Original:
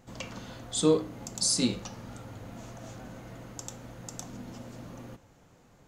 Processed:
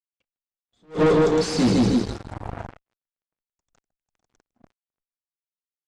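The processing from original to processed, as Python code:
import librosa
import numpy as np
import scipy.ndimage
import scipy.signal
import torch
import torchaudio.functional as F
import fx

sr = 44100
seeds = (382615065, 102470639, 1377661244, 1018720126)

y = fx.rotary_switch(x, sr, hz=0.7, then_hz=7.5, switch_at_s=2.51)
y = fx.echo_feedback(y, sr, ms=156, feedback_pct=50, wet_db=-3.5)
y = fx.noise_reduce_blind(y, sr, reduce_db=12)
y = fx.fuzz(y, sr, gain_db=39.0, gate_db=-45.0)
y = fx.spacing_loss(y, sr, db_at_10k=27)
y = fx.attack_slew(y, sr, db_per_s=270.0)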